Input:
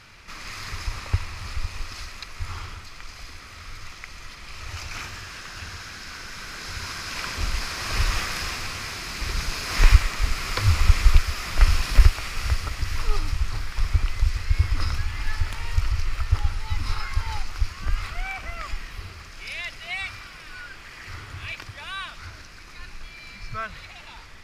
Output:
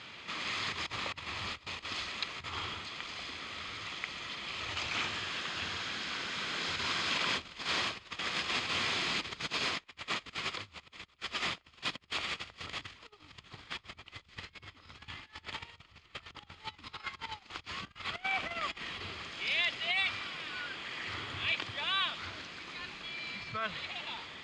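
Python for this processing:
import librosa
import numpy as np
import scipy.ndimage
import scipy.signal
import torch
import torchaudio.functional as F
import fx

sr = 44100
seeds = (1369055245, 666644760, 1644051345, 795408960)

y = fx.low_shelf(x, sr, hz=440.0, db=3.0)
y = fx.over_compress(y, sr, threshold_db=-31.0, ratio=-1.0)
y = fx.cabinet(y, sr, low_hz=200.0, low_slope=12, high_hz=6800.0, hz=(1500.0, 3300.0, 5600.0), db=(-4, 9, -10))
y = y * librosa.db_to_amplitude(-6.5)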